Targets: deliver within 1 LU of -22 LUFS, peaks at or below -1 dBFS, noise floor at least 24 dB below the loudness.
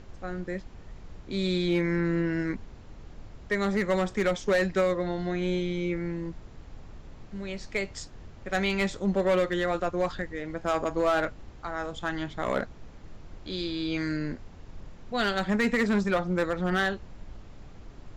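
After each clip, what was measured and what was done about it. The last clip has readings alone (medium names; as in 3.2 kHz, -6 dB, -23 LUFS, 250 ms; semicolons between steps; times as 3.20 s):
clipped samples 0.6%; clipping level -18.5 dBFS; noise floor -48 dBFS; noise floor target -53 dBFS; loudness -29.0 LUFS; peak level -18.5 dBFS; loudness target -22.0 LUFS
-> clip repair -18.5 dBFS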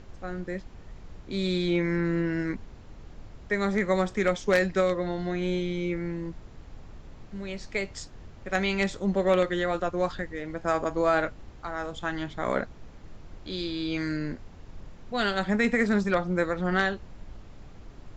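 clipped samples 0.0%; noise floor -48 dBFS; noise floor target -52 dBFS
-> noise print and reduce 6 dB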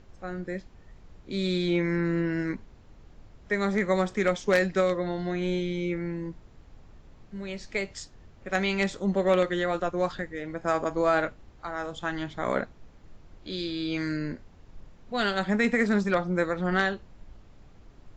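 noise floor -53 dBFS; loudness -28.0 LUFS; peak level -9.5 dBFS; loudness target -22.0 LUFS
-> trim +6 dB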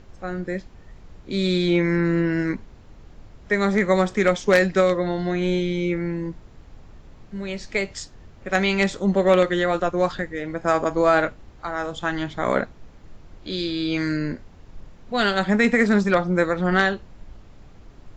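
loudness -22.0 LUFS; peak level -3.5 dBFS; noise floor -47 dBFS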